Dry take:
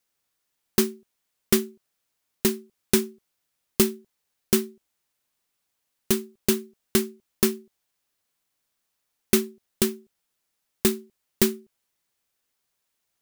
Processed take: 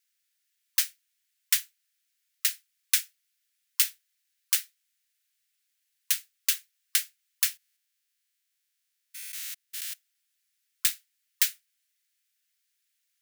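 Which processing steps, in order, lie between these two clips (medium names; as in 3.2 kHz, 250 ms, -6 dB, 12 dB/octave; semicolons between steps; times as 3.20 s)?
7.57–9.94 s: spectrogram pixelated in time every 200 ms; steep high-pass 1.6 kHz 36 dB/octave; spectral gate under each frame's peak -30 dB strong; trim +1 dB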